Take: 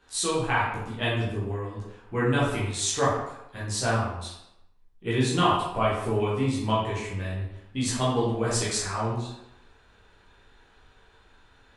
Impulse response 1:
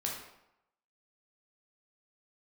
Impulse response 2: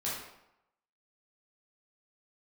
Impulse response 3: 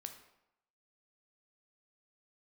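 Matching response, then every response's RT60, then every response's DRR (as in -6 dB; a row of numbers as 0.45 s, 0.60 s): 2; 0.85 s, 0.85 s, 0.85 s; -2.5 dB, -8.0 dB, 5.5 dB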